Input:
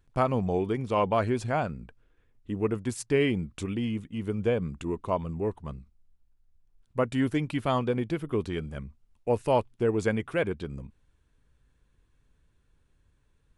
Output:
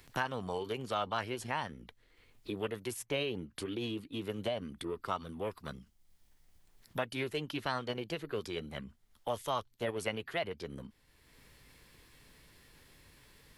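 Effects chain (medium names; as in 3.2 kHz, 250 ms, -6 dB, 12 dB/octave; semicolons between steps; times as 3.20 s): tilt shelf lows -5.5 dB, about 820 Hz; formant shift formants +4 st; three bands compressed up and down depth 70%; trim -7 dB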